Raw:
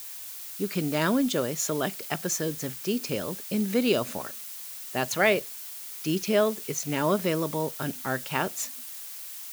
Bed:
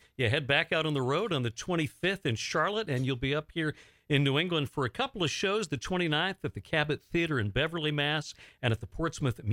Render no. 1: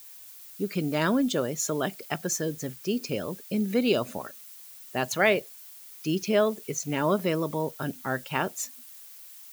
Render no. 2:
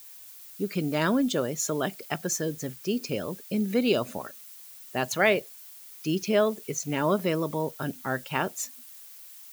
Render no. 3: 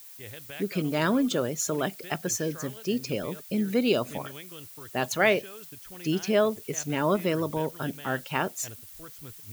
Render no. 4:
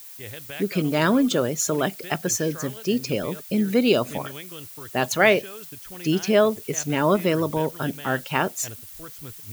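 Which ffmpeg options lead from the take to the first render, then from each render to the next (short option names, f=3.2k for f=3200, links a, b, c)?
-af "afftdn=nr=9:nf=-40"
-af anull
-filter_complex "[1:a]volume=-16.5dB[a];[0:a][a]amix=inputs=2:normalize=0"
-af "volume=5dB"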